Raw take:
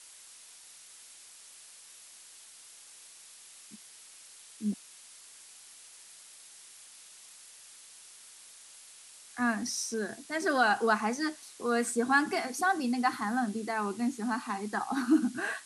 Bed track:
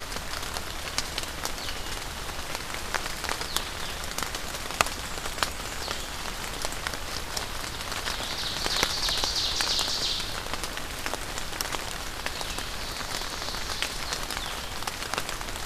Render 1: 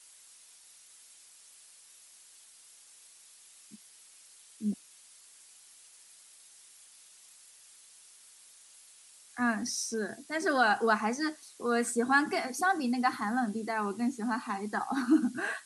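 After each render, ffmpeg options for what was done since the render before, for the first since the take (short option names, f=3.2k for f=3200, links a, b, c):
-af "afftdn=nr=6:nf=-53"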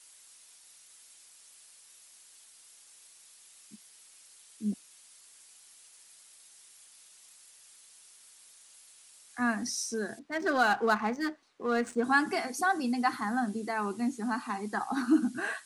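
-filter_complex "[0:a]asettb=1/sr,asplit=3[a][b][c];[a]atrim=end=10.194[d];[b]atrim=start=10.19:end=12.04,asetpts=PTS-STARTPTS,afade=t=in:d=0.004:c=qsin,afade=t=out:st=1.846:d=0.004:c=qsin,adynamicsmooth=sensitivity=7.5:basefreq=1.9k[e];[c]atrim=start=12.036[f];[d][e]acrossfade=d=0.004:c1=hsin:c2=qsin[g];[g][f]acrossfade=d=0.004:c1=qsin:c2=hsin"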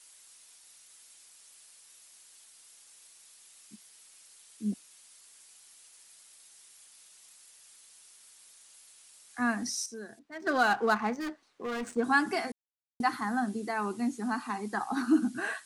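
-filter_complex "[0:a]asettb=1/sr,asplit=3[a][b][c];[a]atrim=end=11.204[d];[b]atrim=start=11.2:end=11.97,asetpts=PTS-STARTPTS,afade=t=in:d=0.004:c=qsin,afade=t=out:st=0.766:d=0.004:c=qsin,asoftclip=type=hard:threshold=-32dB[e];[c]atrim=start=11.966[f];[d][e]acrossfade=d=0.004:c1=hsin:c2=qsin[g];[g][f]acrossfade=d=0.004:c1=qsin:c2=hsin,asplit=5[h][i][j][k][l];[h]atrim=end=9.862[m];[i]atrim=start=9.858:end=10.472,asetpts=PTS-STARTPTS,volume=-9dB[n];[j]atrim=start=10.468:end=12.52,asetpts=PTS-STARTPTS,afade=t=out:st=2.048:d=0.004:c=hsin[o];[k]atrim=start=12.52:end=13,asetpts=PTS-STARTPTS,volume=0[p];[l]atrim=start=13,asetpts=PTS-STARTPTS,afade=t=in:d=0.004:c=hsin[q];[m][n]acrossfade=d=0.004:c1=hsin:c2=hsin[r];[o][p][q]concat=n=3:v=0:a=1[s];[r][s]acrossfade=d=0.004:c1=hsin:c2=hsin"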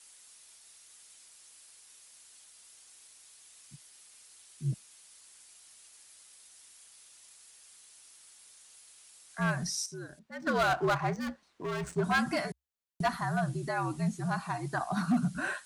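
-af "afreqshift=-69,asoftclip=type=hard:threshold=-22.5dB"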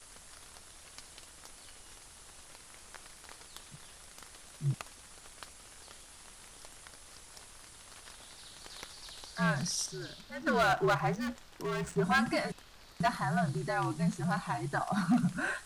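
-filter_complex "[1:a]volume=-22dB[a];[0:a][a]amix=inputs=2:normalize=0"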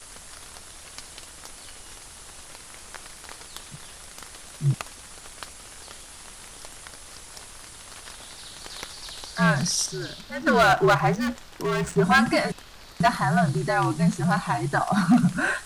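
-af "volume=9.5dB"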